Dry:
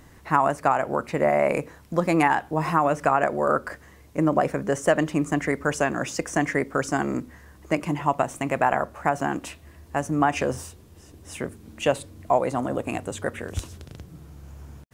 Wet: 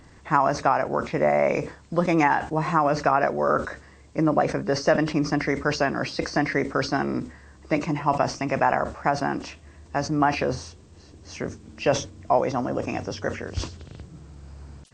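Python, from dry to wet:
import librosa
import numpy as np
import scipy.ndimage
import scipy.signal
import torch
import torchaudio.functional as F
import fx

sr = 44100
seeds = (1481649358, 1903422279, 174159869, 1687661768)

y = fx.freq_compress(x, sr, knee_hz=2600.0, ratio=1.5)
y = fx.sustainer(y, sr, db_per_s=140.0)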